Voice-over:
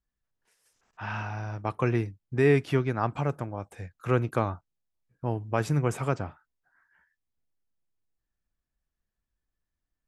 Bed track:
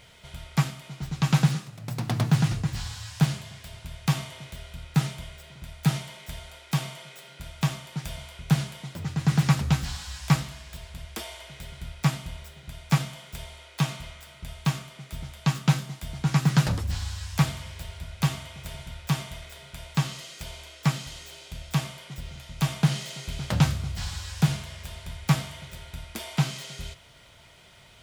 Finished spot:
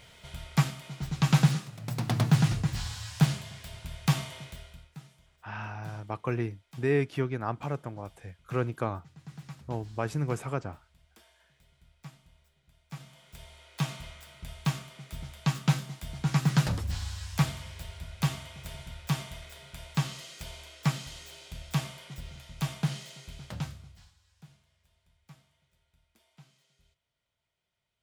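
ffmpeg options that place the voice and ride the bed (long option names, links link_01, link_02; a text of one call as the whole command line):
ffmpeg -i stem1.wav -i stem2.wav -filter_complex "[0:a]adelay=4450,volume=-4.5dB[link_01];[1:a]volume=19dB,afade=type=out:start_time=4.37:duration=0.58:silence=0.0749894,afade=type=in:start_time=12.89:duration=1.15:silence=0.1,afade=type=out:start_time=22.05:duration=2.09:silence=0.0398107[link_02];[link_01][link_02]amix=inputs=2:normalize=0" out.wav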